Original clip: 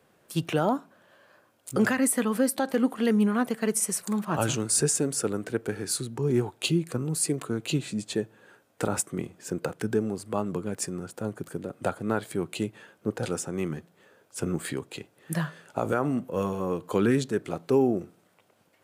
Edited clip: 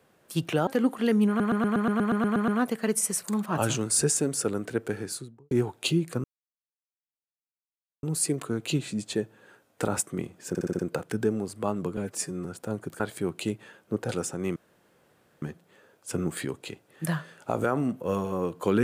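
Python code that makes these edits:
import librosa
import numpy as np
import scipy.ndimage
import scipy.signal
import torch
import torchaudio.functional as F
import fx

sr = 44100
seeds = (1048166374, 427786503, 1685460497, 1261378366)

y = fx.studio_fade_out(x, sr, start_s=5.72, length_s=0.58)
y = fx.edit(y, sr, fx.cut(start_s=0.67, length_s=1.99),
    fx.stutter(start_s=3.27, slice_s=0.12, count=11),
    fx.insert_silence(at_s=7.03, length_s=1.79),
    fx.stutter(start_s=9.49, slice_s=0.06, count=6),
    fx.stretch_span(start_s=10.67, length_s=0.32, factor=1.5),
    fx.cut(start_s=11.54, length_s=0.6),
    fx.insert_room_tone(at_s=13.7, length_s=0.86), tone=tone)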